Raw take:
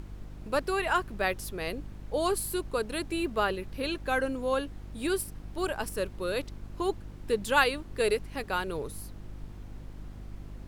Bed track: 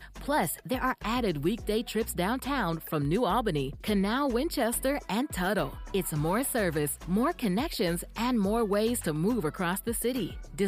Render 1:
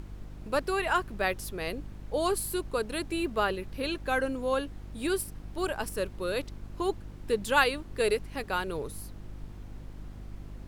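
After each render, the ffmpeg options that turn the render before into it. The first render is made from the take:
-af anull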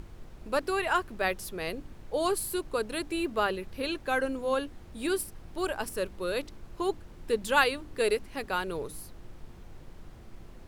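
-af "bandreject=f=50:t=h:w=4,bandreject=f=100:t=h:w=4,bandreject=f=150:t=h:w=4,bandreject=f=200:t=h:w=4,bandreject=f=250:t=h:w=4,bandreject=f=300:t=h:w=4"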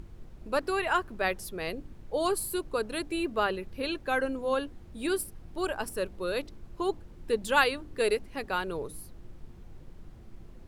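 -af "afftdn=nr=6:nf=-49"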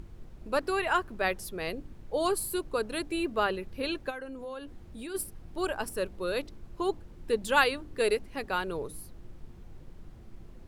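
-filter_complex "[0:a]asplit=3[s0][s1][s2];[s0]afade=t=out:st=4.09:d=0.02[s3];[s1]acompressor=threshold=0.0126:ratio=4:attack=3.2:release=140:knee=1:detection=peak,afade=t=in:st=4.09:d=0.02,afade=t=out:st=5.14:d=0.02[s4];[s2]afade=t=in:st=5.14:d=0.02[s5];[s3][s4][s5]amix=inputs=3:normalize=0"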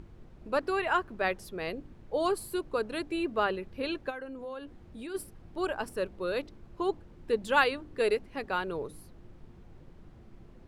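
-af "lowpass=f=3400:p=1,lowshelf=f=64:g=-7.5"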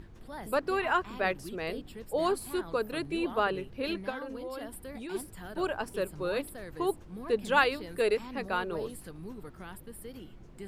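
-filter_complex "[1:a]volume=0.158[s0];[0:a][s0]amix=inputs=2:normalize=0"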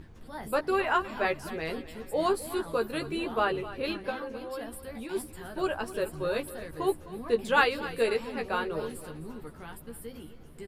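-filter_complex "[0:a]asplit=2[s0][s1];[s1]adelay=13,volume=0.596[s2];[s0][s2]amix=inputs=2:normalize=0,aecho=1:1:258|516|774|1032|1290:0.168|0.0873|0.0454|0.0236|0.0123"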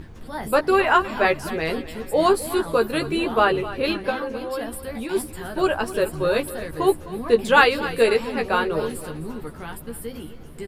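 -af "volume=2.82,alimiter=limit=0.794:level=0:latency=1"

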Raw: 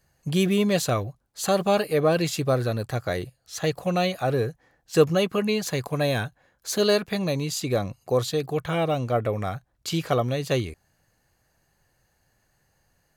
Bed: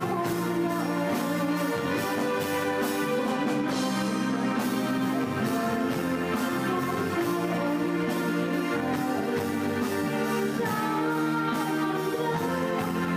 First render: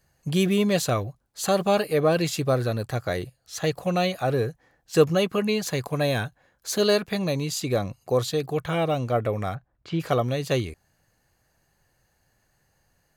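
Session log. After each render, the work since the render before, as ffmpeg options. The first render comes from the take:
-filter_complex "[0:a]asplit=3[s0][s1][s2];[s0]afade=t=out:st=9.54:d=0.02[s3];[s1]lowpass=2000,afade=t=in:st=9.54:d=0.02,afade=t=out:st=9.99:d=0.02[s4];[s2]afade=t=in:st=9.99:d=0.02[s5];[s3][s4][s5]amix=inputs=3:normalize=0"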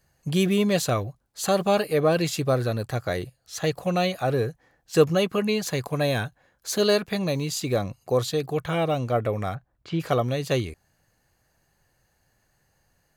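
-filter_complex "[0:a]asettb=1/sr,asplit=3[s0][s1][s2];[s0]atrim=end=7.284[s3];[s1]atrim=start=7.28:end=7.82,asetpts=PTS-STARTPTS,afade=t=in:d=0.004:c=qsin,afade=t=out:st=0.536:d=0.004:c=qsin,acrusher=bits=8:mix=0:aa=0.5[s4];[s2]atrim=start=7.816[s5];[s3][s4]acrossfade=d=0.004:c1=hsin:c2=qsin[s6];[s6][s5]acrossfade=d=0.004:c1=qsin:c2=hsin"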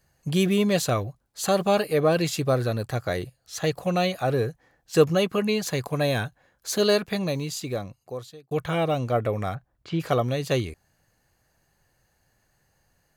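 -filter_complex "[0:a]asplit=2[s0][s1];[s0]atrim=end=8.51,asetpts=PTS-STARTPTS,afade=t=out:st=7.11:d=1.4[s2];[s1]atrim=start=8.51,asetpts=PTS-STARTPTS,afade=t=in:d=0.004:c=hsin[s3];[s2][s3]concat=n=2:v=0:a=1"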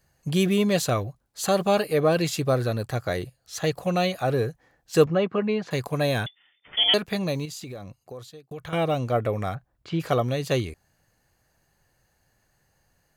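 -filter_complex "[0:a]asettb=1/sr,asplit=3[s0][s1][s2];[s0]atrim=end=5.064[s3];[s1]atrim=start=5.06:end=5.71,asetpts=PTS-STARTPTS,afade=t=in:d=0.004:c=qsin,afade=t=out:st=0.646:d=0.004:c=qsin,highpass=130,lowpass=2100[s4];[s2]atrim=start=5.706[s5];[s3][s4]acrossfade=d=0.004:c1=hsin:c2=qsin[s6];[s6][s5]acrossfade=d=0.004:c1=qsin:c2=hsin,asettb=1/sr,asplit=3[s7][s8][s9];[s7]atrim=end=6.264[s10];[s8]atrim=start=6.26:end=6.94,asetpts=PTS-STARTPTS,afade=t=in:d=0.004:c=qsin,afade=t=out:st=0.676:d=0.004:c=qsin,lowpass=f=3100:t=q:w=0.5098,lowpass=f=3100:t=q:w=0.6013,lowpass=f=3100:t=q:w=0.9,lowpass=f=3100:t=q:w=2.563,afreqshift=-3600[s11];[s9]atrim=start=6.936[s12];[s10][s11]acrossfade=d=0.004:c1=hsin:c2=qsin[s13];[s13][s12]acrossfade=d=0.004:c1=qsin:c2=hsin,asettb=1/sr,asplit=3[s14][s15][s16];[s14]atrim=end=7.454[s17];[s15]atrim=start=7.45:end=8.73,asetpts=PTS-STARTPTS,afade=t=in:d=0.004:c=qsin,afade=t=out:st=1.276:d=0.004:c=qsin,acompressor=threshold=0.02:ratio=6:attack=3.2:release=140:knee=1:detection=peak[s18];[s16]atrim=start=8.726[s19];[s17][s18]acrossfade=d=0.004:c1=hsin:c2=qsin[s20];[s20][s19]acrossfade=d=0.004:c1=qsin:c2=hsin"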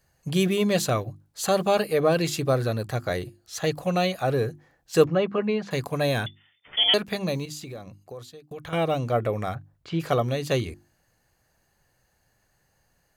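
-af "bandreject=f=50:t=h:w=6,bandreject=f=100:t=h:w=6,bandreject=f=150:t=h:w=6,bandreject=f=200:t=h:w=6,bandreject=f=250:t=h:w=6,bandreject=f=300:t=h:w=6,bandreject=f=350:t=h:w=6"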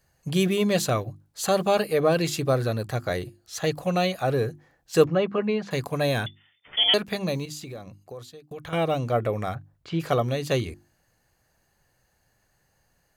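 -af anull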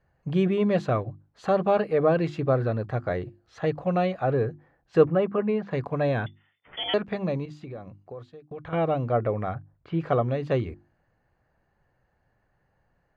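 -af "lowpass=1700"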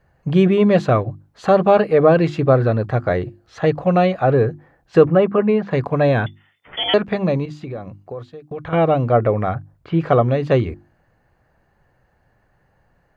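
-af "volume=2.82,alimiter=limit=0.794:level=0:latency=1"

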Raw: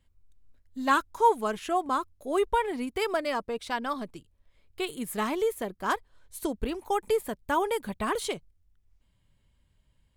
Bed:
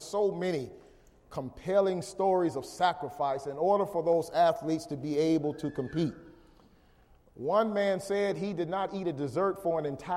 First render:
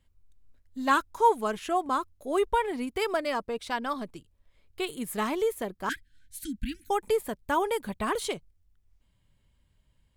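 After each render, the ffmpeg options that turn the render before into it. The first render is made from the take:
-filter_complex "[0:a]asettb=1/sr,asplit=3[s0][s1][s2];[s0]atrim=end=5.894[s3];[s1]atrim=start=5.89:end=6.9,asetpts=PTS-STARTPTS,afade=t=in:d=0.004:c=qsin,afade=t=out:st=1.006:d=0.004:c=qsin,asuperstop=centerf=680:order=20:qfactor=0.57[s4];[s2]atrim=start=6.896[s5];[s3][s4]acrossfade=d=0.004:c1=hsin:c2=qsin[s6];[s6][s5]acrossfade=d=0.004:c1=qsin:c2=hsin"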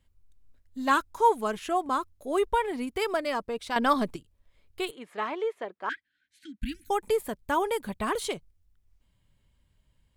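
-filter_complex "[0:a]asplit=3[s0][s1][s2];[s0]afade=t=out:st=4.9:d=0.02[s3];[s1]highpass=440,lowpass=2700,afade=t=in:st=4.9:d=0.02,afade=t=out:st=6.61:d=0.02[s4];[s2]afade=t=in:st=6.61:d=0.02[s5];[s3][s4][s5]amix=inputs=3:normalize=0,asplit=3[s6][s7][s8];[s6]atrim=end=3.762[s9];[s7]atrim=start=3.758:end=4.162,asetpts=PTS-STARTPTS,volume=2.66[s10];[s8]atrim=start=4.158[s11];[s9][s10]acrossfade=d=0.004:c1=hsin:c2=hsin[s12];[s12][s11]acrossfade=d=0.004:c1=hsin:c2=hsin"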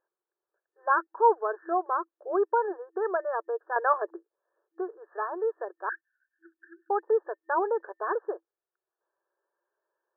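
-af "afftfilt=real='re*between(b*sr/4096,330,1800)':imag='im*between(b*sr/4096,330,1800)':win_size=4096:overlap=0.75,adynamicequalizer=threshold=0.0126:dfrequency=480:dqfactor=6.2:tfrequency=480:tqfactor=6.2:attack=5:release=100:ratio=0.375:range=1.5:mode=boostabove:tftype=bell"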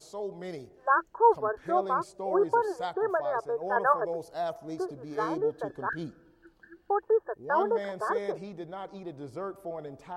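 -filter_complex "[1:a]volume=0.398[s0];[0:a][s0]amix=inputs=2:normalize=0"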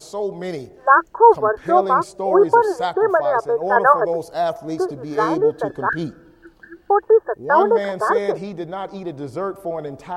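-af "volume=3.76,alimiter=limit=0.891:level=0:latency=1"

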